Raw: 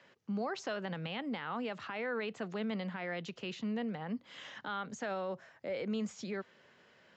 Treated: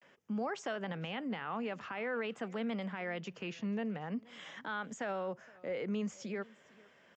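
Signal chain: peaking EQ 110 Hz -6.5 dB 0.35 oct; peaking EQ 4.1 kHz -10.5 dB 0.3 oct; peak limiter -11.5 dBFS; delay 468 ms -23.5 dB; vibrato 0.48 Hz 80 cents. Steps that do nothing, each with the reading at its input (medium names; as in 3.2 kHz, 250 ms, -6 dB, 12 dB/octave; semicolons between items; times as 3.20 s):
peak limiter -11.5 dBFS: peak at its input -27.0 dBFS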